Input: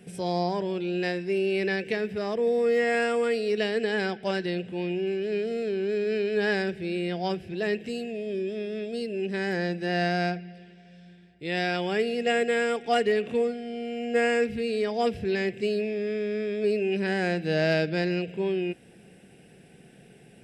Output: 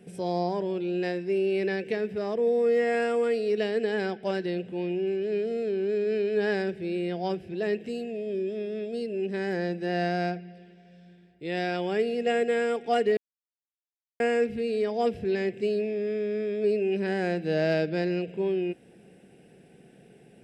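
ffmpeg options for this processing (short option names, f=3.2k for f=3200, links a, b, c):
-filter_complex "[0:a]asplit=3[a][b][c];[a]atrim=end=13.17,asetpts=PTS-STARTPTS,afade=t=out:st=13.166:d=0.004:c=hsin[d];[b]atrim=start=13.17:end=14.2,asetpts=PTS-STARTPTS,volume=0[e];[c]atrim=start=14.2,asetpts=PTS-STARTPTS,afade=t=in:d=0.004:c=hsin[f];[d][e][f]concat=n=3:v=0:a=1,equalizer=f=400:t=o:w=2.7:g=6.5,volume=-6dB"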